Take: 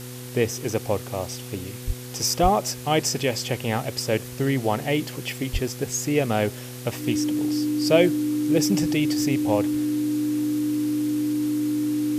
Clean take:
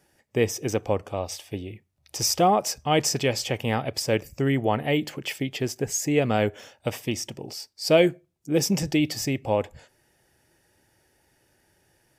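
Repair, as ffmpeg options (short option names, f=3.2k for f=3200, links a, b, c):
-filter_complex "[0:a]bandreject=f=124.3:t=h:w=4,bandreject=f=248.6:t=h:w=4,bandreject=f=372.9:t=h:w=4,bandreject=f=497.2:t=h:w=4,bandreject=f=300:w=30,asplit=3[a][b][c];[a]afade=t=out:st=1.86:d=0.02[d];[b]highpass=f=140:w=0.5412,highpass=f=140:w=1.3066,afade=t=in:st=1.86:d=0.02,afade=t=out:st=1.98:d=0.02[e];[c]afade=t=in:st=1.98:d=0.02[f];[d][e][f]amix=inputs=3:normalize=0,asplit=3[g][h][i];[g]afade=t=out:st=2.42:d=0.02[j];[h]highpass=f=140:w=0.5412,highpass=f=140:w=1.3066,afade=t=in:st=2.42:d=0.02,afade=t=out:st=2.54:d=0.02[k];[i]afade=t=in:st=2.54:d=0.02[l];[j][k][l]amix=inputs=3:normalize=0,asplit=3[m][n][o];[m]afade=t=out:st=5.52:d=0.02[p];[n]highpass=f=140:w=0.5412,highpass=f=140:w=1.3066,afade=t=in:st=5.52:d=0.02,afade=t=out:st=5.64:d=0.02[q];[o]afade=t=in:st=5.64:d=0.02[r];[p][q][r]amix=inputs=3:normalize=0,afwtdn=0.0089"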